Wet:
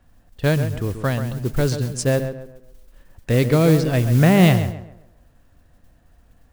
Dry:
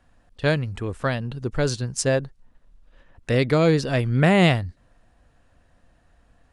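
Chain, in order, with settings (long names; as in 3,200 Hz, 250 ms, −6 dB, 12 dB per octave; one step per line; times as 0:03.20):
low-shelf EQ 370 Hz +7 dB
noise that follows the level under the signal 21 dB
on a send: tape delay 135 ms, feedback 39%, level −8 dB, low-pass 2,000 Hz
on the sum: level −1.5 dB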